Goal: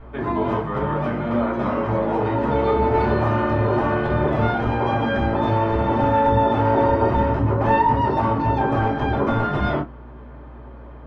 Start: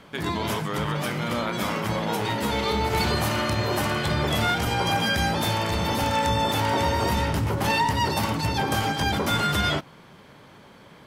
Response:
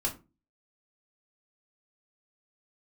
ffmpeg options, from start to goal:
-filter_complex "[0:a]lowpass=1.2k,lowshelf=f=150:g=-8.5,aeval=exprs='val(0)+0.00316*(sin(2*PI*60*n/s)+sin(2*PI*2*60*n/s)/2+sin(2*PI*3*60*n/s)/3+sin(2*PI*4*60*n/s)/4+sin(2*PI*5*60*n/s)/5)':c=same[a];[1:a]atrim=start_sample=2205,atrim=end_sample=3528,asetrate=48510,aresample=44100[b];[a][b]afir=irnorm=-1:irlink=0,volume=2.5dB"

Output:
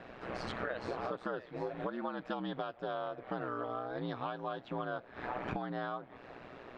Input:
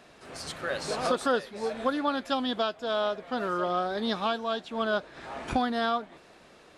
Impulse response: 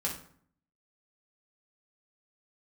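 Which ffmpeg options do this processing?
-af "lowpass=2.2k,acompressor=threshold=-41dB:ratio=8,aeval=exprs='val(0)*sin(2*PI*61*n/s)':c=same,volume=8dB"

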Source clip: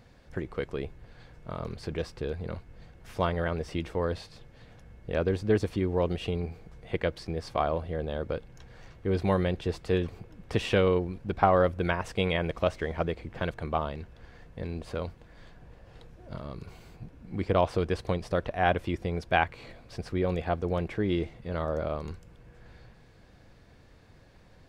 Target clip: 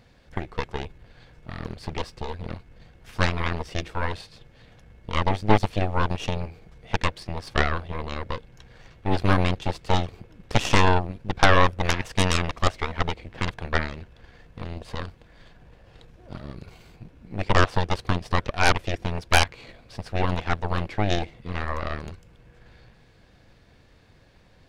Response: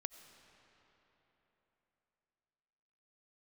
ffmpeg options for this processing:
-af "equalizer=f=3.2k:w=0.92:g=4,aeval=exprs='0.562*(cos(1*acos(clip(val(0)/0.562,-1,1)))-cos(1*PI/2))+0.251*(cos(8*acos(clip(val(0)/0.562,-1,1)))-cos(8*PI/2))':c=same"

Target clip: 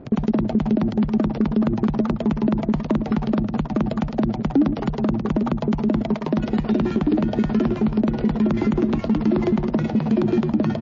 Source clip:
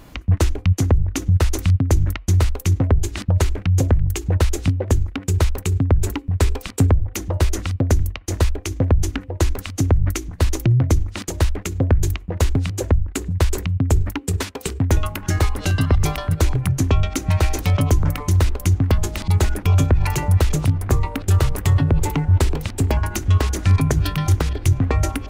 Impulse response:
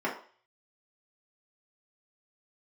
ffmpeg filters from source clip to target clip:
-filter_complex "[0:a]alimiter=limit=-12.5dB:level=0:latency=1:release=371,bass=f=250:g=-1,treble=f=4k:g=-14,asplit=2[a][b];[b]adelay=254,lowpass=f=4.2k:p=1,volume=-11.5dB,asplit=2[c][d];[d]adelay=254,lowpass=f=4.2k:p=1,volume=0.19[e];[a][c][e]amix=inputs=3:normalize=0,acompressor=threshold=-21dB:ratio=8,asetrate=103194,aresample=44100,aresample=11025,aresample=44100,adynamicsmooth=sensitivity=5:basefreq=530,asoftclip=type=hard:threshold=-16.5dB,equalizer=f=300:t=o:w=1.7:g=11.5,volume=-1.5dB" -ar 16000 -c:a libmp3lame -b:a 32k

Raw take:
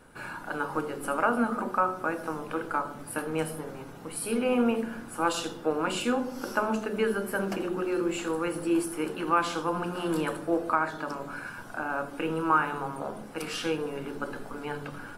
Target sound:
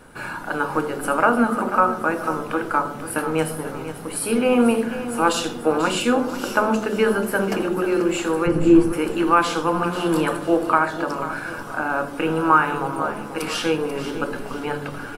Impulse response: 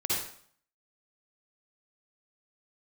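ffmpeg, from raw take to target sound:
-filter_complex "[0:a]asplit=3[a][b][c];[a]afade=t=out:st=8.46:d=0.02[d];[b]aemphasis=mode=reproduction:type=riaa,afade=t=in:st=8.46:d=0.02,afade=t=out:st=8.92:d=0.02[e];[c]afade=t=in:st=8.92:d=0.02[f];[d][e][f]amix=inputs=3:normalize=0,aecho=1:1:489|978|1467|1956:0.251|0.1|0.0402|0.0161,volume=8dB"

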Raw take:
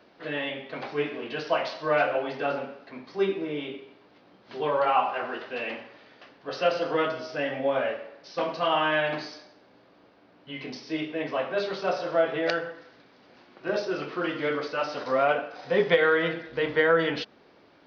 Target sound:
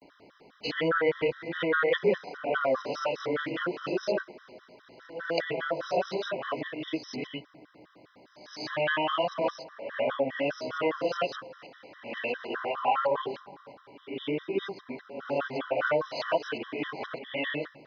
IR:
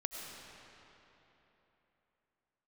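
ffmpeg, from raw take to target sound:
-filter_complex "[0:a]areverse,asplit=2[a][b];[b]equalizer=f=125:t=o:w=0.33:g=10,equalizer=f=200:t=o:w=0.33:g=-4,equalizer=f=3.15k:t=o:w=0.33:g=-12[c];[1:a]atrim=start_sample=2205[d];[c][d]afir=irnorm=-1:irlink=0,volume=-19dB[e];[a][e]amix=inputs=2:normalize=0,acompressor=threshold=-29dB:ratio=1.5,afftfilt=real='re*gt(sin(2*PI*4.9*pts/sr)*(1-2*mod(floor(b*sr/1024/1000),2)),0)':imag='im*gt(sin(2*PI*4.9*pts/sr)*(1-2*mod(floor(b*sr/1024/1000),2)),0)':win_size=1024:overlap=0.75,volume=2.5dB"

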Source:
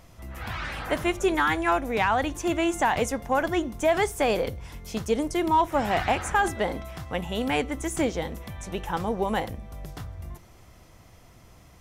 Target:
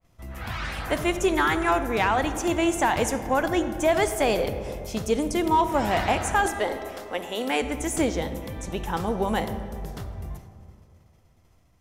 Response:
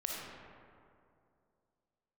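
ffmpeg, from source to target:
-filter_complex "[0:a]agate=range=-33dB:threshold=-42dB:ratio=3:detection=peak,asettb=1/sr,asplit=3[a][b][c];[a]atrim=end=6.464[d];[b]atrim=start=6.46:end=7.62,asetpts=PTS-STARTPTS,afade=t=in:d=0.004:c=qsin,afade=t=out:st=1.156:d=0.004:c=qsin,highpass=f=270:w=0.5412,highpass=f=270:w=1.3066[e];[c]atrim=start=7.616[f];[d][e]acrossfade=d=0.004:c1=hsin:c2=qsin[g];[g][f]acrossfade=d=0.004:c1=qsin:c2=hsin,asplit=2[h][i];[1:a]atrim=start_sample=2205,lowshelf=f=410:g=6[j];[i][j]afir=irnorm=-1:irlink=0,volume=-9.5dB[k];[h][k]amix=inputs=2:normalize=0,adynamicequalizer=threshold=0.0112:dfrequency=3700:dqfactor=0.7:tfrequency=3700:tqfactor=0.7:attack=5:release=100:ratio=0.375:range=2:mode=boostabove:tftype=highshelf,volume=-2dB"

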